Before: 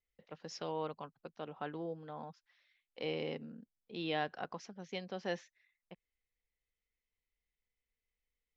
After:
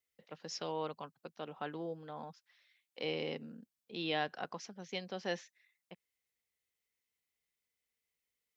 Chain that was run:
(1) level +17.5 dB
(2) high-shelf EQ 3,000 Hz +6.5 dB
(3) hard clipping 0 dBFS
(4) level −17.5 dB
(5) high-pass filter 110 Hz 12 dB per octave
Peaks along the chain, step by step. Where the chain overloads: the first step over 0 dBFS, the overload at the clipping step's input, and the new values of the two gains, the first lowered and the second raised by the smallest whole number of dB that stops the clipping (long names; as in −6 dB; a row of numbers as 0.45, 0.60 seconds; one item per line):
−4.0, −2.5, −2.5, −20.0, −20.5 dBFS
no step passes full scale